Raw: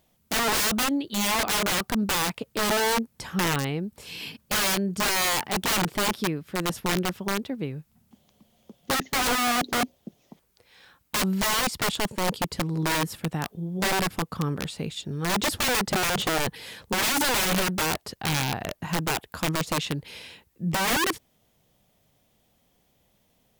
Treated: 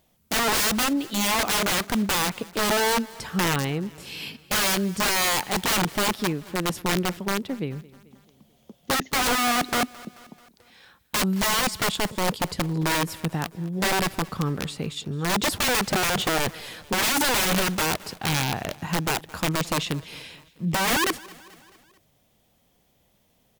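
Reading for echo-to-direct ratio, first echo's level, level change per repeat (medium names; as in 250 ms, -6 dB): -20.0 dB, -21.5 dB, -5.0 dB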